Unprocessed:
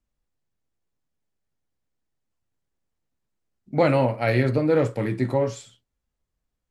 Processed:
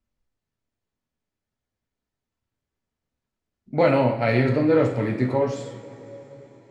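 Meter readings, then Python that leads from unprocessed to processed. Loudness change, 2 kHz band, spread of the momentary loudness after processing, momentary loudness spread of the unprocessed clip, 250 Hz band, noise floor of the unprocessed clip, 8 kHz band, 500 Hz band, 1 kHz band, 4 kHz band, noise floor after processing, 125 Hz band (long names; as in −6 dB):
+1.0 dB, +1.0 dB, 17 LU, 8 LU, +2.0 dB, −81 dBFS, can't be measured, +1.5 dB, +1.5 dB, +0.5 dB, below −85 dBFS, 0.0 dB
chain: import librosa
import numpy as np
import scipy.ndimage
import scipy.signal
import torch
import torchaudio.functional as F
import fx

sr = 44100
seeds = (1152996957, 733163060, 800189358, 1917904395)

y = fx.air_absorb(x, sr, metres=58.0)
y = fx.rev_double_slope(y, sr, seeds[0], early_s=0.57, late_s=4.7, knee_db=-18, drr_db=2.5)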